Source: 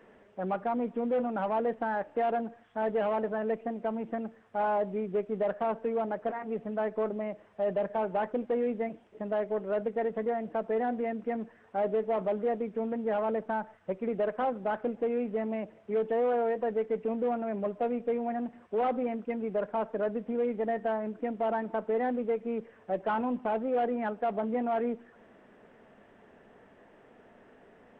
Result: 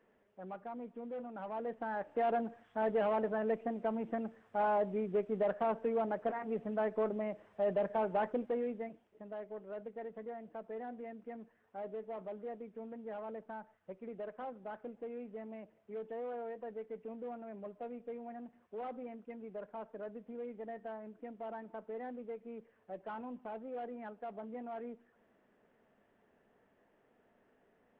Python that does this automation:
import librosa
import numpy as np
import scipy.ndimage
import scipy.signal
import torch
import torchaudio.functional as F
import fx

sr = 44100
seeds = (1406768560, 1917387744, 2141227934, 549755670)

y = fx.gain(x, sr, db=fx.line((1.3, -14.0), (2.31, -3.0), (8.28, -3.0), (9.22, -14.0)))